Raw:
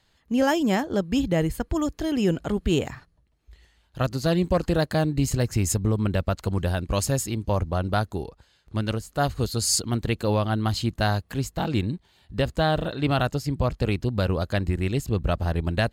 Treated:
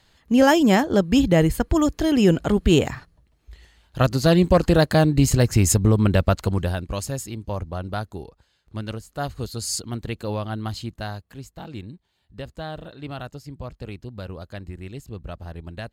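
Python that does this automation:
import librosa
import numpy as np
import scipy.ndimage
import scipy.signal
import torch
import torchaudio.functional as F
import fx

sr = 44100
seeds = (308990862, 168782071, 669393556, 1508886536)

y = fx.gain(x, sr, db=fx.line((6.34, 6.0), (7.01, -4.5), (10.67, -4.5), (11.33, -11.0)))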